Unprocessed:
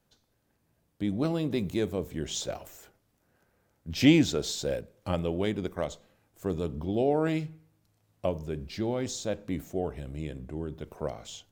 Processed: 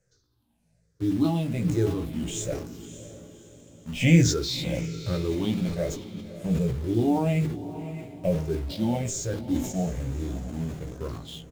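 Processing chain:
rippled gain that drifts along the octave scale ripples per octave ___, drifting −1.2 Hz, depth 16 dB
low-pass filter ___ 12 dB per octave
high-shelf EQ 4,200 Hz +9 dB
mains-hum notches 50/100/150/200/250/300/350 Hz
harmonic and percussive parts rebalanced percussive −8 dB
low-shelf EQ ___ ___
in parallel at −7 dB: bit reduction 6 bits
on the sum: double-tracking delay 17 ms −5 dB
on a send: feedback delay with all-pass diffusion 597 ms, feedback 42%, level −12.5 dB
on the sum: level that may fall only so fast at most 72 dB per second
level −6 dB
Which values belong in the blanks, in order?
0.53, 9,700 Hz, 260 Hz, +10 dB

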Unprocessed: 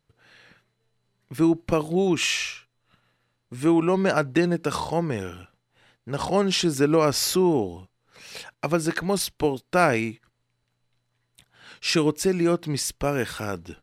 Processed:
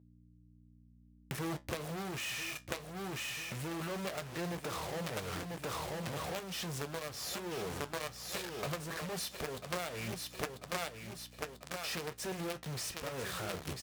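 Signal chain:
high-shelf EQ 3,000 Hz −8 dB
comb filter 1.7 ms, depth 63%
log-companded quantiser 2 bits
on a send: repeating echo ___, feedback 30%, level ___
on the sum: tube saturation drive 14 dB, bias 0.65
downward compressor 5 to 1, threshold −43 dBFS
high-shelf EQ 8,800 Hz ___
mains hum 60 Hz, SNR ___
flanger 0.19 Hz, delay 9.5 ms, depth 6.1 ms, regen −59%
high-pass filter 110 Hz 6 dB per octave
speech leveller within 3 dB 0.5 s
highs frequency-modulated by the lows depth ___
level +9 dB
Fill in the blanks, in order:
992 ms, −11.5 dB, +3.5 dB, 17 dB, 0.35 ms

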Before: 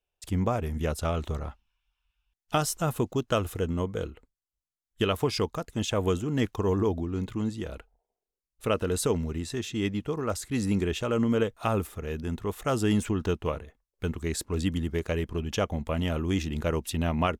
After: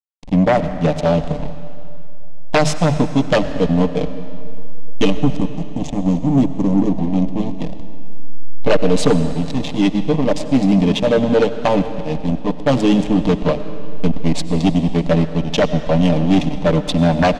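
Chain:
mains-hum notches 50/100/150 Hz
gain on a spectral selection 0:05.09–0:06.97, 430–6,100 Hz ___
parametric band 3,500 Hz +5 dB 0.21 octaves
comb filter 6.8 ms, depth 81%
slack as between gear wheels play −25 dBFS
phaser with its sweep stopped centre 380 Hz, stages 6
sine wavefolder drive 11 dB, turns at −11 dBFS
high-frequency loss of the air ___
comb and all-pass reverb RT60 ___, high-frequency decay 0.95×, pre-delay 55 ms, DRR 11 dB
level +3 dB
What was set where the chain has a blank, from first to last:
−15 dB, 100 metres, 2.5 s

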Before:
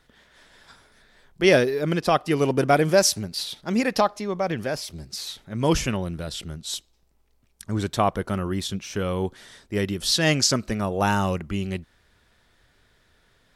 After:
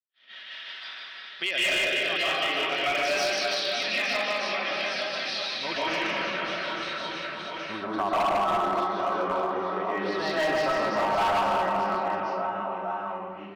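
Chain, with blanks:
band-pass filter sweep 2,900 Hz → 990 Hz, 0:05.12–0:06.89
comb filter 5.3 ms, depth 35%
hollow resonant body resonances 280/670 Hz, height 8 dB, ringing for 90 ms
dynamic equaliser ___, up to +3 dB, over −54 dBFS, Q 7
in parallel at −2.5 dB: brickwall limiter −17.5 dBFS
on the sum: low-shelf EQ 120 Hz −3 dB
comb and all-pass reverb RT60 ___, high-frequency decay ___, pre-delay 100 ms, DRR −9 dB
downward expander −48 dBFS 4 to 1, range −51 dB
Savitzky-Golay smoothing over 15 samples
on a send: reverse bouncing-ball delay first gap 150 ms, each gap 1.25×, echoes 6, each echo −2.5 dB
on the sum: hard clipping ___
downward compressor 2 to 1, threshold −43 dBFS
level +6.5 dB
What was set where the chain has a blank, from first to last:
340 Hz, 0.92 s, 0.6×, −13 dBFS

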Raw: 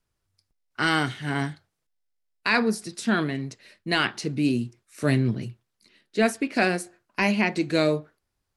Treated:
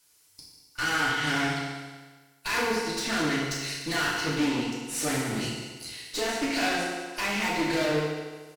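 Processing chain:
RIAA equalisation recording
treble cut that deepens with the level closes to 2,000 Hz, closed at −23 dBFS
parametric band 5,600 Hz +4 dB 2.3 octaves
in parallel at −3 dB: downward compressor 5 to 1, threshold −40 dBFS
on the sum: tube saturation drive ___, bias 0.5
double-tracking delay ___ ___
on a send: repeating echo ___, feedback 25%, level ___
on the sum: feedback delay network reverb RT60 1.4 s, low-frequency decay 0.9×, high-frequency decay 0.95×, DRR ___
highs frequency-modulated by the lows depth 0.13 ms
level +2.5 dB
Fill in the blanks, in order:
33 dB, 31 ms, −14 dB, 188 ms, −15 dB, −5 dB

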